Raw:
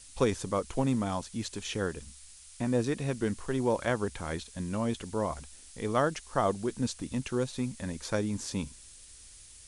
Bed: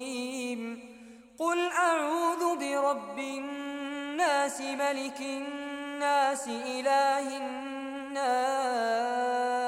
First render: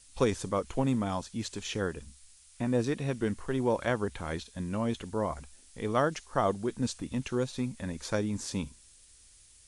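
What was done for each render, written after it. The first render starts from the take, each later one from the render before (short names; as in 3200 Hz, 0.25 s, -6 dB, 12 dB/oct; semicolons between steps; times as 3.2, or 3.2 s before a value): noise print and reduce 6 dB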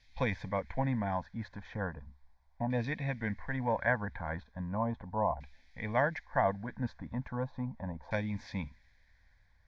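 LFO low-pass saw down 0.37 Hz 870–2700 Hz; fixed phaser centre 1900 Hz, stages 8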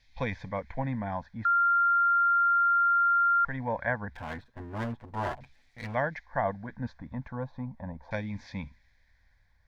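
1.45–3.45 bleep 1390 Hz -20.5 dBFS; 4.14–5.95 minimum comb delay 8.2 ms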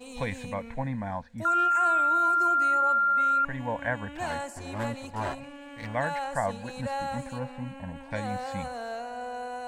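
add bed -7.5 dB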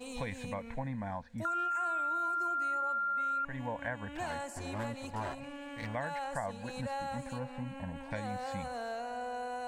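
compressor 2.5:1, threshold -37 dBFS, peak gain reduction 10.5 dB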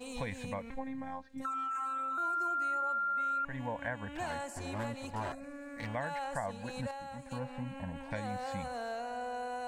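0.7–2.18 robotiser 265 Hz; 5.32–5.8 fixed phaser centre 610 Hz, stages 8; 6.91–7.31 gain -6.5 dB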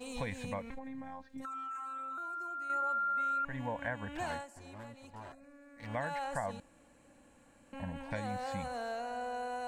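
0.71–2.7 compressor, threshold -39 dBFS; 4.34–5.94 dip -11 dB, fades 0.13 s; 6.6–7.73 room tone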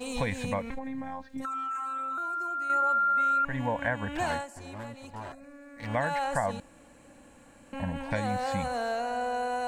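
gain +8 dB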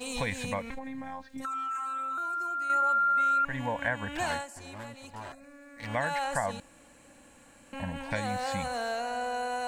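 tilt shelf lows -3.5 dB, about 1400 Hz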